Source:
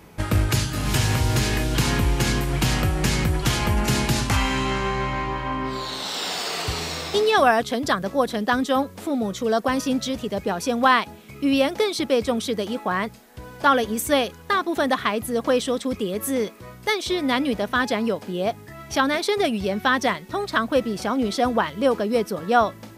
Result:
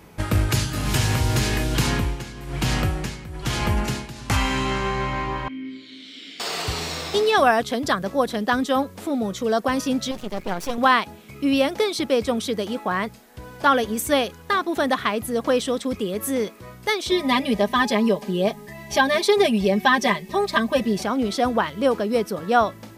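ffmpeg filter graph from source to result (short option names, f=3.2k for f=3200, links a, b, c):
-filter_complex "[0:a]asettb=1/sr,asplit=3[a][b][c];[a]atrim=end=1.874[d];[b]atrim=start=1.87:end=4.3,asetpts=PTS-STARTPTS,afade=t=in:d=0.004:c=qsin,afade=t=out:st=2.426:d=0.004:c=qsin,highshelf=f=8.8k:g=-5,tremolo=f=1.1:d=0.84[e];[c]atrim=start=4.296[f];[d][e]acrossfade=d=0.004:c1=hsin:c2=qsin[g];[g][f]acrossfade=d=0.004:c1=qsin:c2=hsin,asettb=1/sr,asplit=3[h][i][j];[h]atrim=end=5.484[k];[i]atrim=start=5.48:end=6.4,asetpts=PTS-STARTPTS,afade=t=in:d=0.004:c=qsin,afade=t=out:st=0.916:d=0.004:c=qsin,asplit=3[l][m][n];[l]bandpass=f=270:t=q:w=8,volume=0dB[o];[m]bandpass=f=2.29k:t=q:w=8,volume=-6dB[p];[n]bandpass=f=3.01k:t=q:w=8,volume=-9dB[q];[o][p][q]amix=inputs=3:normalize=0,highshelf=f=4k:g=7[r];[j]atrim=start=6.396[s];[k][r]acrossfade=d=0.004:c1=hsin:c2=qsin[t];[t][s]acrossfade=d=0.004:c1=qsin:c2=hsin,asettb=1/sr,asplit=3[u][v][w];[u]atrim=end=10.114[x];[v]atrim=start=10.11:end=10.78,asetpts=PTS-STARTPTS,afade=t=in:d=0.004:c=qsin,afade=t=out:st=0.666:d=0.004:c=qsin,aecho=1:1:5.5:0.41,atrim=end_sample=29547,aeval=exprs='max(val(0),0)':c=same[y];[w]atrim=start=10.776[z];[x][y]acrossfade=d=0.004:c1=hsin:c2=qsin[aa];[aa][z]acrossfade=d=0.004:c1=qsin:c2=hsin,asettb=1/sr,asplit=3[ab][ac][ad];[ab]atrim=end=17.114[ae];[ac]atrim=start=17.11:end=21.03,asetpts=PTS-STARTPTS,afade=t=in:d=0.004:c=qsin,afade=t=out:st=3.916:d=0.004:c=qsin,asuperstop=centerf=1400:order=8:qfactor=6.1,aecho=1:1:5:0.91,atrim=end_sample=172872[af];[ad]atrim=start=21.026[ag];[ae][af]acrossfade=d=0.004:c1=hsin:c2=qsin[ah];[ah][ag]acrossfade=d=0.004:c1=qsin:c2=hsin"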